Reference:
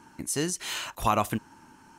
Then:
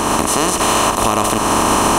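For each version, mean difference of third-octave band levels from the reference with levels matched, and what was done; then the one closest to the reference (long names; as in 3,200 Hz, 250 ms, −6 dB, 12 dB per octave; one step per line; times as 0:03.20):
15.0 dB: compressor on every frequency bin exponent 0.2
camcorder AGC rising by 31 dB per second
parametric band 140 Hz −7.5 dB 0.46 octaves
boost into a limiter +7 dB
level −1 dB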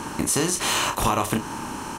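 11.0 dB: compressor on every frequency bin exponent 0.6
downward compressor 4 to 1, threshold −26 dBFS, peak gain reduction 8.5 dB
notch filter 680 Hz, Q 12
double-tracking delay 31 ms −7 dB
level +7 dB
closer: second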